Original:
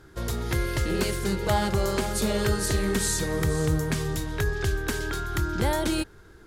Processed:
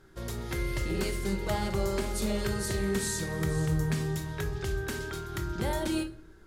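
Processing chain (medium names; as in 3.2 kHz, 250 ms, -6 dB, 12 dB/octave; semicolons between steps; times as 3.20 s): simulated room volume 570 m³, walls furnished, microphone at 1.1 m; trim -7 dB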